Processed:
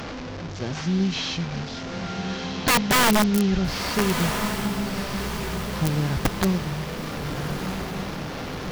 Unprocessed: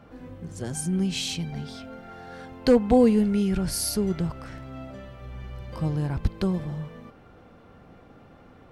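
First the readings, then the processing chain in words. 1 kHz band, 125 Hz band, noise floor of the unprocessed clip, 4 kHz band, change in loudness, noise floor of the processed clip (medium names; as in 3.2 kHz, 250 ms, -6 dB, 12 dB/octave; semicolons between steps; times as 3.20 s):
+9.5 dB, +3.5 dB, -52 dBFS, +8.0 dB, 0.0 dB, -34 dBFS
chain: one-bit delta coder 32 kbps, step -30.5 dBFS; integer overflow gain 15.5 dB; echo that smears into a reverb 1312 ms, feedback 50%, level -7 dB; trim +2.5 dB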